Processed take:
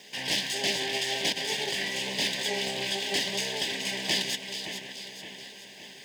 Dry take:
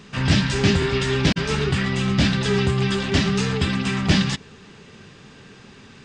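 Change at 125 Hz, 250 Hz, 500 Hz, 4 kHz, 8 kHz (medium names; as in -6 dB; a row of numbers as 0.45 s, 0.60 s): -25.5 dB, -18.5 dB, -10.0 dB, -1.0 dB, +0.5 dB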